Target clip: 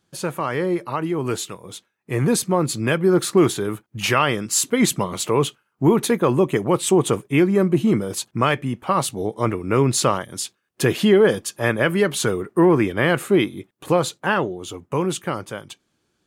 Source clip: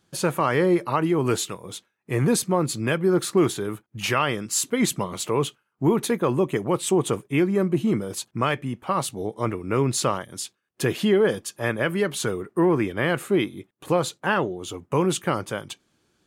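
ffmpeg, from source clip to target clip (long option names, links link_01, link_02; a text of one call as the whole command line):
ffmpeg -i in.wav -af "dynaudnorm=framelen=340:gausssize=13:maxgain=11.5dB,volume=-2.5dB" out.wav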